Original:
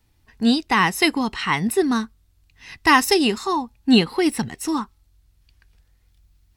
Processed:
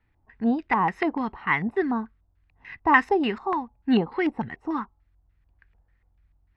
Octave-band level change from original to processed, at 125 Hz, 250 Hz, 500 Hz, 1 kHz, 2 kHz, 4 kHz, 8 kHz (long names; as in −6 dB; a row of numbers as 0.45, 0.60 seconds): −5.5 dB, −5.5 dB, −4.5 dB, −2.5 dB, −4.0 dB, −17.0 dB, below −30 dB